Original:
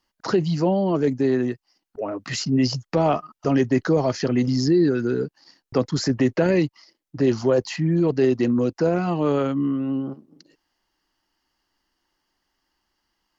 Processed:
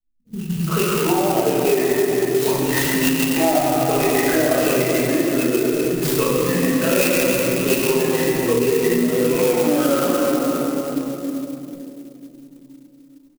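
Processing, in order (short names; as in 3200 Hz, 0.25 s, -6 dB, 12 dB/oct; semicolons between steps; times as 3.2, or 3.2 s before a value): moving spectral ripple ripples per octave 0.79, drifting -1.3 Hz, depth 17 dB; elliptic low-pass 6200 Hz; level quantiser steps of 9 dB; bell 2700 Hz +14.5 dB 0.86 oct; three bands offset in time lows, highs, mids 50/430 ms, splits 200/4000 Hz; reverb RT60 3.5 s, pre-delay 5 ms, DRR -10 dB; compressor, threshold -13 dBFS, peak gain reduction 8.5 dB; bell 95 Hz -13.5 dB 1.1 oct; low-pass opened by the level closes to 420 Hz, open at -15.5 dBFS; clock jitter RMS 0.064 ms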